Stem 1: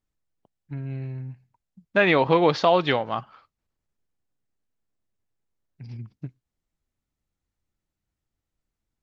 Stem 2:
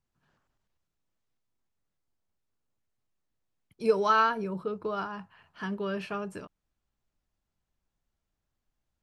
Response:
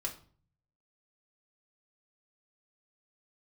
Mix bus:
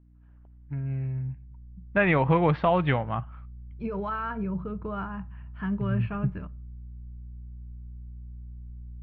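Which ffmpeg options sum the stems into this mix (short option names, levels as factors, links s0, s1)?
-filter_complex "[0:a]aeval=exprs='val(0)+0.00224*(sin(2*PI*60*n/s)+sin(2*PI*2*60*n/s)/2+sin(2*PI*3*60*n/s)/3+sin(2*PI*4*60*n/s)/4+sin(2*PI*5*60*n/s)/5)':c=same,volume=0.708,asplit=2[s0][s1];[s1]volume=0.0891[s2];[1:a]alimiter=limit=0.0668:level=0:latency=1,volume=0.841,asplit=2[s3][s4];[s4]volume=0.2[s5];[2:a]atrim=start_sample=2205[s6];[s2][s5]amix=inputs=2:normalize=0[s7];[s7][s6]afir=irnorm=-1:irlink=0[s8];[s0][s3][s8]amix=inputs=3:normalize=0,lowpass=f=2500:w=0.5412,lowpass=f=2500:w=1.3066,asubboost=boost=8.5:cutoff=140"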